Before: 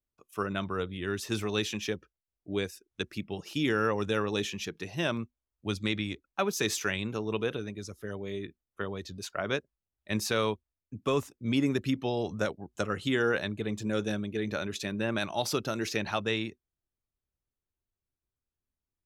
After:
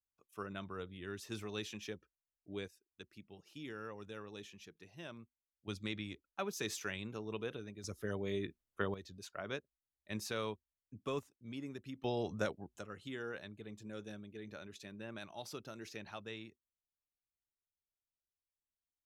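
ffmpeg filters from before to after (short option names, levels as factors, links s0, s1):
-af "asetnsamples=n=441:p=0,asendcmd='2.68 volume volume -19dB;5.68 volume volume -10.5dB;7.84 volume volume -1.5dB;8.94 volume volume -11dB;11.19 volume volume -18dB;12.04 volume volume -6dB;12.79 volume volume -16.5dB',volume=0.251"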